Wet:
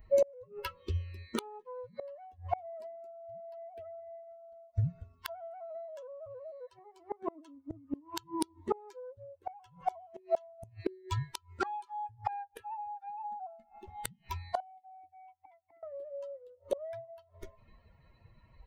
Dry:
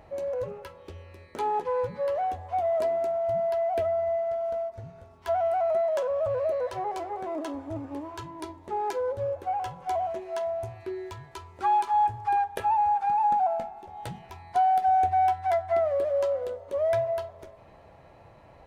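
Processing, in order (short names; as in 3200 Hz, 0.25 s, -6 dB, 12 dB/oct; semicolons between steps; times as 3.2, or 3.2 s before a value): per-bin expansion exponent 2; flipped gate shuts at -36 dBFS, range -33 dB; 14.6–15.83 vowel filter u; gain +18 dB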